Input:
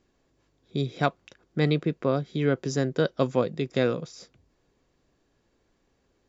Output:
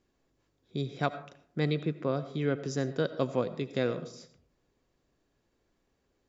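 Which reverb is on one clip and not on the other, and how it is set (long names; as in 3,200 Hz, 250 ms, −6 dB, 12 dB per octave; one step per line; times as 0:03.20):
comb and all-pass reverb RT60 0.64 s, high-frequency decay 0.4×, pre-delay 45 ms, DRR 13 dB
level −5.5 dB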